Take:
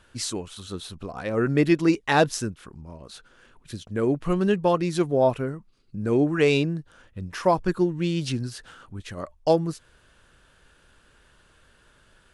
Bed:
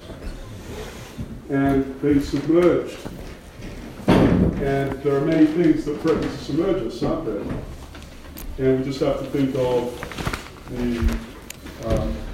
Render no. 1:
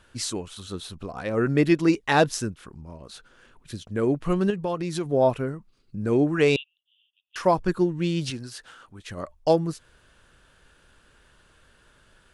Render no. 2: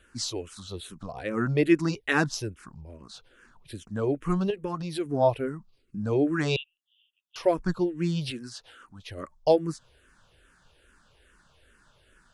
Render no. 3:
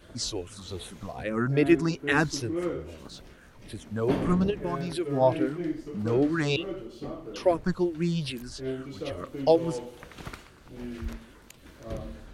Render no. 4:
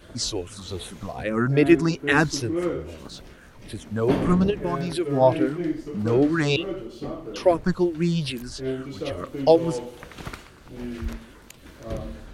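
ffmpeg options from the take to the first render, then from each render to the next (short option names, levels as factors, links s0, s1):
-filter_complex "[0:a]asettb=1/sr,asplit=3[s0][s1][s2];[s0]atrim=end=4.504[s3];[s1]atrim=start=4.5:end=5.06,asetpts=PTS-STARTPTS,afade=t=in:d=0.004:c=qsin,afade=t=out:st=0.556:d=0.004:c=qsin,acompressor=threshold=0.0562:ratio=3:attack=3.2:release=140:knee=1:detection=peak[s4];[s2]atrim=start=5.056[s5];[s3][s4]acrossfade=d=0.004:c1=hsin:c2=qsin[s6];[s6][s5]acrossfade=d=0.004:c1=qsin:c2=hsin,asettb=1/sr,asplit=3[s7][s8][s9];[s7]atrim=end=6.564[s10];[s8]atrim=start=6.56:end=7.36,asetpts=PTS-STARTPTS,afade=t=in:d=0.004:c=qsin,afade=t=out:st=0.796:d=0.004:c=qsin,asuperpass=centerf=3100:order=8:qfactor=3.9[s11];[s9]atrim=start=7.356[s12];[s10][s11]acrossfade=d=0.004:c1=hsin:c2=qsin[s13];[s13][s12]acrossfade=d=0.004:c1=qsin:c2=hsin,asettb=1/sr,asplit=3[s14][s15][s16];[s14]atrim=end=8.304[s17];[s15]atrim=start=8.3:end=9.1,asetpts=PTS-STARTPTS,afade=t=in:d=0.004:c=qsin,afade=t=out:st=0.796:d=0.004:c=qsin,lowshelf=f=290:g=-11[s18];[s16]atrim=start=9.096[s19];[s17][s18]acrossfade=d=0.004:c1=hsin:c2=qsin[s20];[s20][s19]acrossfade=d=0.004:c1=qsin:c2=hsin"
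-filter_complex "[0:a]asplit=2[s0][s1];[s1]afreqshift=-2.4[s2];[s0][s2]amix=inputs=2:normalize=1"
-filter_complex "[1:a]volume=0.188[s0];[0:a][s0]amix=inputs=2:normalize=0"
-af "volume=1.68"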